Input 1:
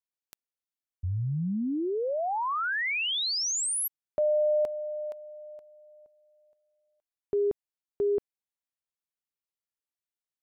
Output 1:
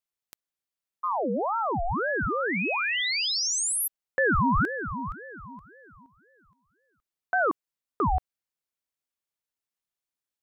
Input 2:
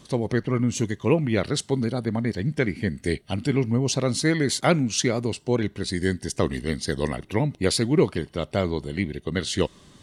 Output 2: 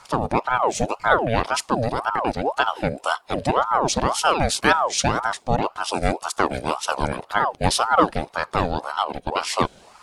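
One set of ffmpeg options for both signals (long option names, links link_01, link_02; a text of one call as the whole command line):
ffmpeg -i in.wav -af "aeval=exprs='val(0)*sin(2*PI*740*n/s+740*0.55/1.9*sin(2*PI*1.9*n/s))':channel_layout=same,volume=5dB" out.wav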